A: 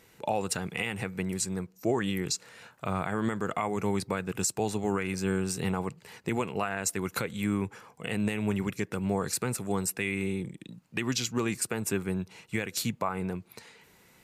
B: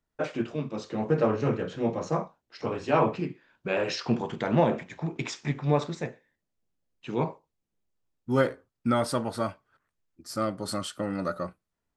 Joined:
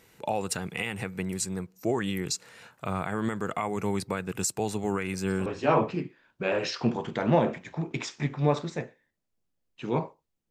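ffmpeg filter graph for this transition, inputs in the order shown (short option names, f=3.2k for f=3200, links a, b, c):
-filter_complex "[1:a]asplit=2[a][b];[0:a]apad=whole_dur=10.5,atrim=end=10.5,atrim=end=5.462[c];[b]atrim=start=2.708:end=7.75[d];[a]atrim=start=2.29:end=2.71,asetpts=PTS-STARTPTS,volume=-11.5dB,afade=t=in:d=0.004:c=hsin,afade=t=out:st=0.416:d=0.004:c=hsin,adelay=5040[e];[c][d]acrossfade=d=0.004:c1=hsin:c2=hsin[f];[f][e]amix=inputs=2:normalize=0"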